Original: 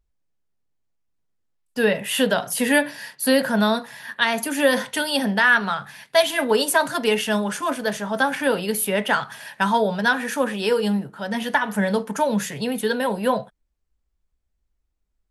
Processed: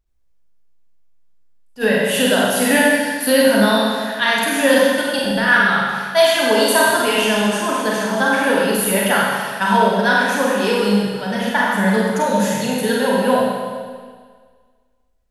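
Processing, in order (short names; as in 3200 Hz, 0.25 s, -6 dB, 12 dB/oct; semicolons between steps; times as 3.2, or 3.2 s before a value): 4.86–5.48 level quantiser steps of 22 dB; Schroeder reverb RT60 1.7 s, combs from 32 ms, DRR -4.5 dB; attack slew limiter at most 370 dB/s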